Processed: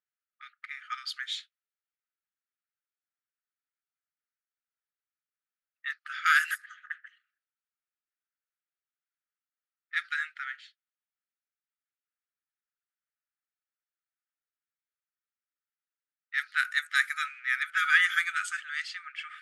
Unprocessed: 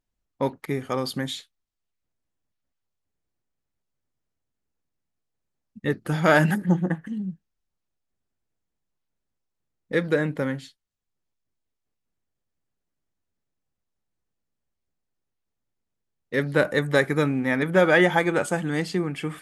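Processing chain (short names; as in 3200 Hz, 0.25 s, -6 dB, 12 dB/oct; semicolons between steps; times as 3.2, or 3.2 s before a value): brick-wall FIR high-pass 1200 Hz; low-pass opened by the level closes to 1800 Hz, open at -24 dBFS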